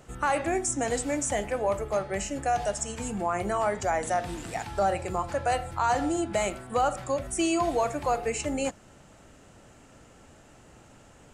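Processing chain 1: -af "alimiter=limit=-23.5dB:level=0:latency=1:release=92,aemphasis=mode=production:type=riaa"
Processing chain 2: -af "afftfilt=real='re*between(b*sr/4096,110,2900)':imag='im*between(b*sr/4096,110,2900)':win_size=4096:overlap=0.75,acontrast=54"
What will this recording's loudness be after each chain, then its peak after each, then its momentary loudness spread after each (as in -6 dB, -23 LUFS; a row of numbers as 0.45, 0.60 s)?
-29.0, -23.0 LUFS; -10.0, -9.5 dBFS; 11, 6 LU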